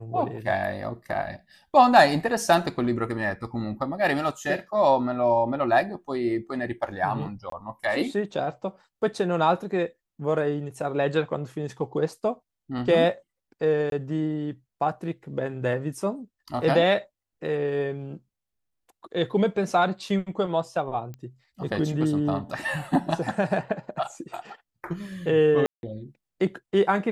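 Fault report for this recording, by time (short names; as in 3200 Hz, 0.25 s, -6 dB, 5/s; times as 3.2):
7.5–7.52 gap 23 ms
13.9–13.92 gap 22 ms
21.14 pop -27 dBFS
25.66–25.83 gap 0.171 s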